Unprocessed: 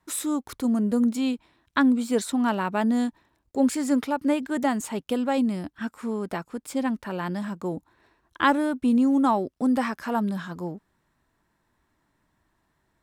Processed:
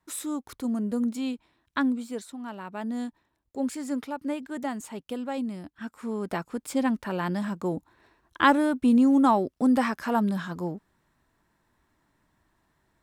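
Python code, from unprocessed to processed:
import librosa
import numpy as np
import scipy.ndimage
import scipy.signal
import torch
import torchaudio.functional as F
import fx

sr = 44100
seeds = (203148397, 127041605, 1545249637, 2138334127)

y = fx.gain(x, sr, db=fx.line((1.85, -5.0), (2.38, -15.0), (3.02, -7.5), (5.71, -7.5), (6.41, 1.0)))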